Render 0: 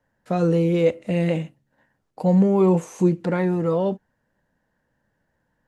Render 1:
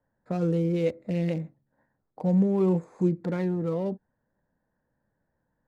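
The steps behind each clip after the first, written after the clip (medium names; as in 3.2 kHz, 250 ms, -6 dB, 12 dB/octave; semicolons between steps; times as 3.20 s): local Wiener filter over 15 samples; dynamic bell 910 Hz, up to -6 dB, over -34 dBFS, Q 0.73; trim -4.5 dB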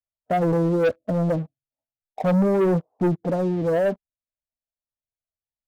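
expander on every frequency bin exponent 1.5; four-pole ladder low-pass 740 Hz, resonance 70%; waveshaping leveller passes 3; trim +9 dB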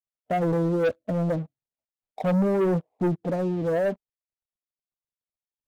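median filter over 25 samples; trim -3 dB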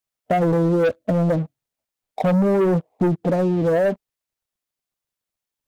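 compression, threshold -25 dBFS, peak gain reduction 5.5 dB; trim +9 dB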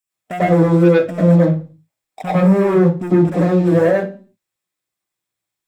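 reverberation RT60 0.35 s, pre-delay 91 ms, DRR -6.5 dB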